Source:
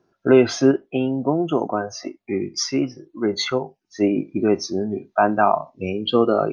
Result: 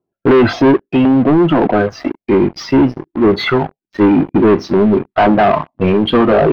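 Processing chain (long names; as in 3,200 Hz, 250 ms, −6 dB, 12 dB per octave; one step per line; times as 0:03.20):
auto-filter notch saw down 1.9 Hz 380–1,800 Hz
leveller curve on the samples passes 5
high-frequency loss of the air 400 metres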